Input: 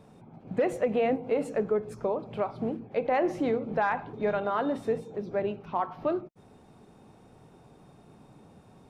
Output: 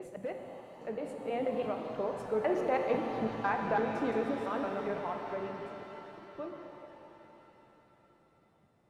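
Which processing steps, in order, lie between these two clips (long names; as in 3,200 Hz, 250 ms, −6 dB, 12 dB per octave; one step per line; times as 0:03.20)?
slices reordered back to front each 167 ms, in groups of 5
source passing by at 0:03.10, 10 m/s, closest 10 metres
reverb with rising layers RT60 3.8 s, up +7 semitones, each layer −8 dB, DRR 3 dB
level −3 dB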